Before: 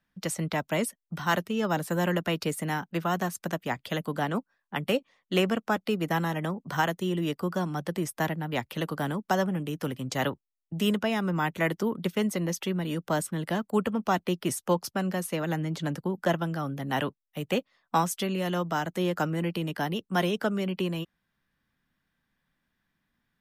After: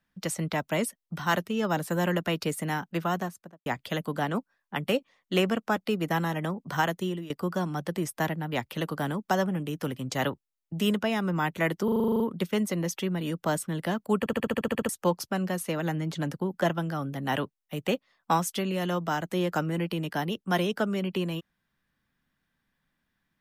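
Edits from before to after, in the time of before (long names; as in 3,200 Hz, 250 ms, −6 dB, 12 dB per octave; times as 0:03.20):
0:03.04–0:03.66: fade out and dull
0:07.03–0:07.30: fade out, to −18.5 dB
0:11.84: stutter 0.04 s, 10 plays
0:13.83: stutter in place 0.07 s, 10 plays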